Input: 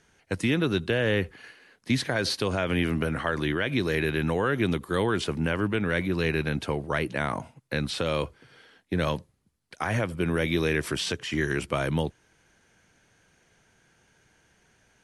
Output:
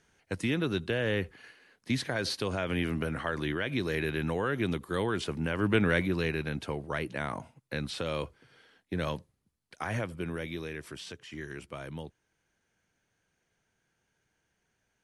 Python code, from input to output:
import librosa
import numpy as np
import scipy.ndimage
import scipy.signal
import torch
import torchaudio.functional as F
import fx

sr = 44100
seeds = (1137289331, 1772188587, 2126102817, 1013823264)

y = fx.gain(x, sr, db=fx.line((5.53, -5.0), (5.76, 2.5), (6.37, -6.0), (10.0, -6.0), (10.71, -14.0)))